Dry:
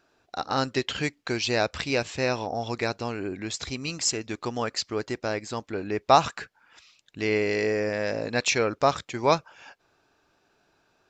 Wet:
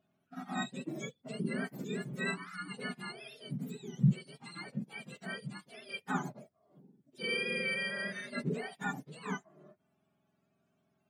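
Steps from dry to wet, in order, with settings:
frequency axis turned over on the octave scale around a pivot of 1,000 Hz
harmonic and percussive parts rebalanced percussive −12 dB
level −7.5 dB

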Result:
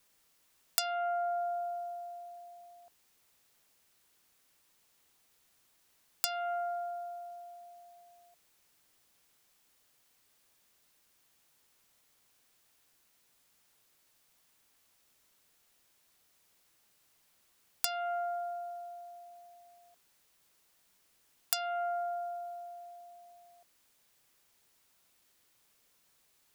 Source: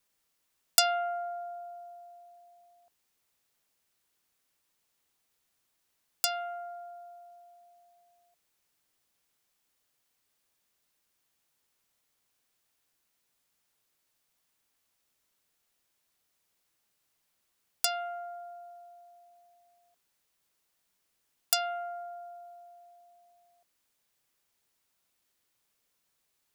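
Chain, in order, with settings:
downward compressor 4 to 1, threshold −38 dBFS, peak gain reduction 18 dB
level +7 dB

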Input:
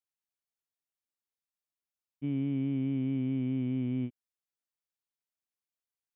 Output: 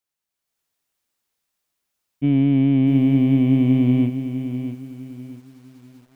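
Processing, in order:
automatic gain control gain up to 8.5 dB
in parallel at −10 dB: soft clipping −27.5 dBFS, distortion −9 dB
on the sum: feedback echo at a low word length 652 ms, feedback 35%, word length 9 bits, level −9.5 dB
level +5 dB

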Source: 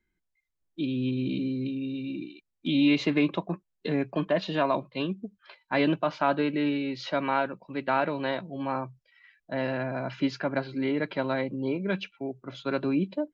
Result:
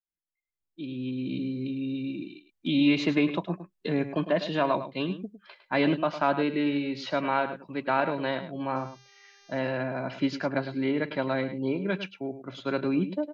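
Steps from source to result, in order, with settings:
fade in at the beginning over 1.88 s
0:08.75–0:09.58: hum with harmonics 400 Hz, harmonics 16, −61 dBFS 0 dB per octave
single-tap delay 105 ms −11.5 dB

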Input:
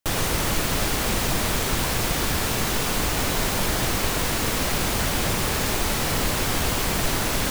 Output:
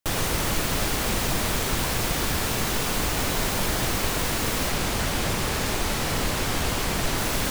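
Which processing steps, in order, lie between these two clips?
0:04.70–0:07.18: high-shelf EQ 11,000 Hz −5.5 dB
level −1.5 dB

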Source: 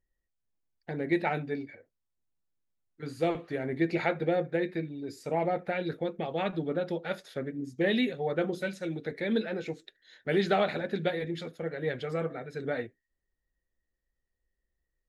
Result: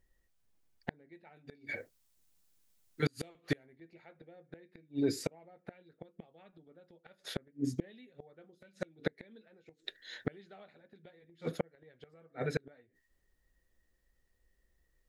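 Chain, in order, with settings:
0:01.36–0:03.76: high-shelf EQ 3,000 Hz +11.5 dB
gate with flip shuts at −27 dBFS, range −37 dB
level +8.5 dB

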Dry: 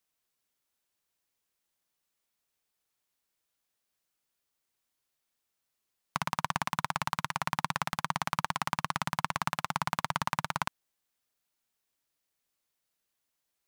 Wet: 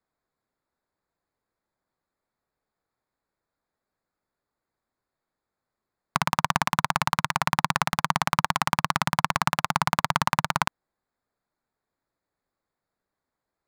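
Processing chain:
adaptive Wiener filter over 15 samples
level +8 dB

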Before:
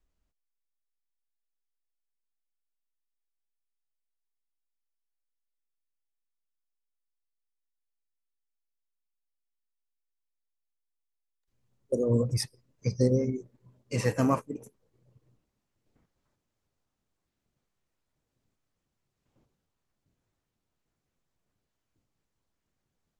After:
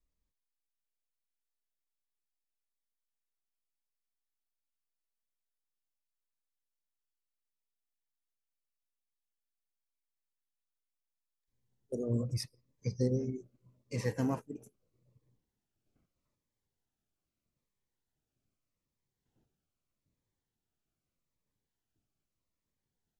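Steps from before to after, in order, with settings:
dynamic equaliser 8,500 Hz, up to −5 dB, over −54 dBFS, Q 1.6
phaser whose notches keep moving one way falling 0.8 Hz
level −6 dB

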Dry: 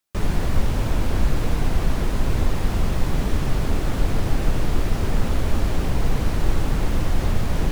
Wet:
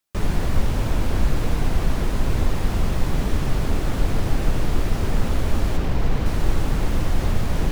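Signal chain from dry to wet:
0:05.77–0:06.26: running median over 5 samples

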